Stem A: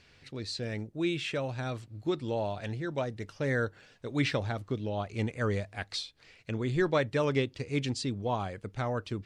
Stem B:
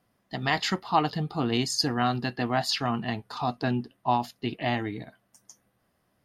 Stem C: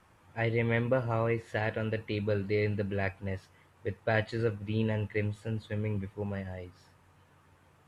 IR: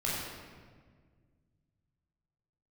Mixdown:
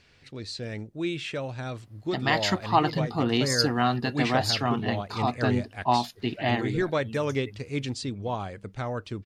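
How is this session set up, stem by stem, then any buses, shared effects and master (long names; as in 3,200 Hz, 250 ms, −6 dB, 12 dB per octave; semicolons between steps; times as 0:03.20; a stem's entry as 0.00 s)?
+0.5 dB, 0.00 s, no send, no processing
+1.5 dB, 1.80 s, no send, no processing
−8.0 dB, 2.30 s, no send, spectral dynamics exaggerated over time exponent 3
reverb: not used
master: no processing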